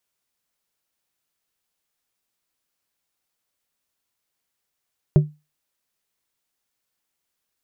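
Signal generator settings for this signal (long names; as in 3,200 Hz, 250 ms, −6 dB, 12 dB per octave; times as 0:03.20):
struck glass plate, lowest mode 150 Hz, modes 3, decay 0.25 s, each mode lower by 9 dB, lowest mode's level −6.5 dB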